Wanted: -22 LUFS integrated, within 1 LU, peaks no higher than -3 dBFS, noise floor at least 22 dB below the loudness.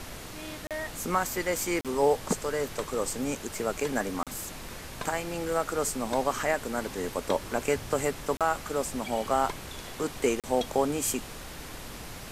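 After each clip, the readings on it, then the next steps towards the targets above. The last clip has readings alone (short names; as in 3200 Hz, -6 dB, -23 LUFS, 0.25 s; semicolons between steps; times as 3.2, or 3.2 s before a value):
dropouts 5; longest dropout 37 ms; noise floor -42 dBFS; noise floor target -52 dBFS; loudness -30.0 LUFS; peak -12.5 dBFS; loudness target -22.0 LUFS
-> interpolate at 0.67/1.81/4.23/8.37/10.4, 37 ms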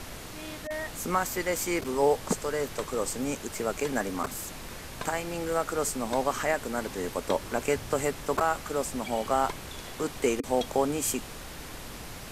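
dropouts 0; noise floor -42 dBFS; noise floor target -52 dBFS
-> noise print and reduce 10 dB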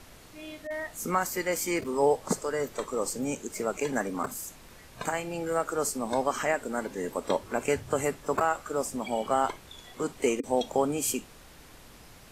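noise floor -52 dBFS; loudness -30.0 LUFS; peak -12.5 dBFS; loudness target -22.0 LUFS
-> gain +8 dB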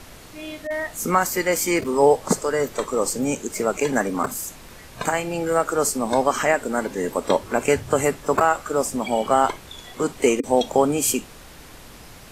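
loudness -22.0 LUFS; peak -4.5 dBFS; noise floor -44 dBFS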